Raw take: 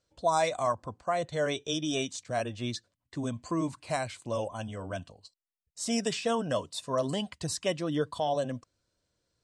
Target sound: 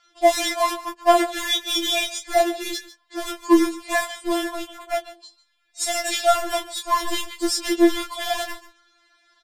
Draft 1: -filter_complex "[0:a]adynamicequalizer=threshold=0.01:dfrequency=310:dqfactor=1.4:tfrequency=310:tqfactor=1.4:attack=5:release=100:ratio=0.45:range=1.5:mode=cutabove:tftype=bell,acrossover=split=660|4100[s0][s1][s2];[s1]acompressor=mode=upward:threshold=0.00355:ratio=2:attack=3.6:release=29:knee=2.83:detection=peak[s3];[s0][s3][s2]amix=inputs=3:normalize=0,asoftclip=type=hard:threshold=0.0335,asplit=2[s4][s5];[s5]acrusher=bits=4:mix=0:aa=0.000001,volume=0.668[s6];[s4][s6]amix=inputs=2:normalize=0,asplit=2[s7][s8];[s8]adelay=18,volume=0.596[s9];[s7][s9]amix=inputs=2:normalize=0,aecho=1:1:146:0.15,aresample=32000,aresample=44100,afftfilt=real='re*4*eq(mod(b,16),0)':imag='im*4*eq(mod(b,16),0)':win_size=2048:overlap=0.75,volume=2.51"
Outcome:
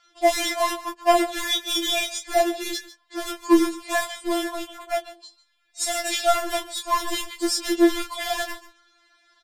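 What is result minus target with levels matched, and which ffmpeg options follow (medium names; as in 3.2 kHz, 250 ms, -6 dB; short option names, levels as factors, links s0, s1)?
hard clipper: distortion +10 dB
-filter_complex "[0:a]adynamicequalizer=threshold=0.01:dfrequency=310:dqfactor=1.4:tfrequency=310:tqfactor=1.4:attack=5:release=100:ratio=0.45:range=1.5:mode=cutabove:tftype=bell,acrossover=split=660|4100[s0][s1][s2];[s1]acompressor=mode=upward:threshold=0.00355:ratio=2:attack=3.6:release=29:knee=2.83:detection=peak[s3];[s0][s3][s2]amix=inputs=3:normalize=0,asoftclip=type=hard:threshold=0.075,asplit=2[s4][s5];[s5]acrusher=bits=4:mix=0:aa=0.000001,volume=0.668[s6];[s4][s6]amix=inputs=2:normalize=0,asplit=2[s7][s8];[s8]adelay=18,volume=0.596[s9];[s7][s9]amix=inputs=2:normalize=0,aecho=1:1:146:0.15,aresample=32000,aresample=44100,afftfilt=real='re*4*eq(mod(b,16),0)':imag='im*4*eq(mod(b,16),0)':win_size=2048:overlap=0.75,volume=2.51"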